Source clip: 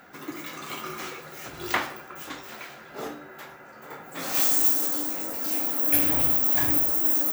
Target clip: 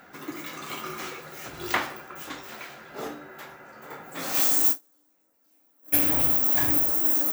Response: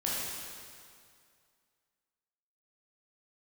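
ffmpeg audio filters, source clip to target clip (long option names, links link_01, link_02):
-filter_complex "[0:a]asplit=3[link_01][link_02][link_03];[link_01]afade=type=out:start_time=4.71:duration=0.02[link_04];[link_02]agate=range=-37dB:threshold=-19dB:ratio=16:detection=peak,afade=type=in:start_time=4.71:duration=0.02,afade=type=out:start_time=5.92:duration=0.02[link_05];[link_03]afade=type=in:start_time=5.92:duration=0.02[link_06];[link_04][link_05][link_06]amix=inputs=3:normalize=0"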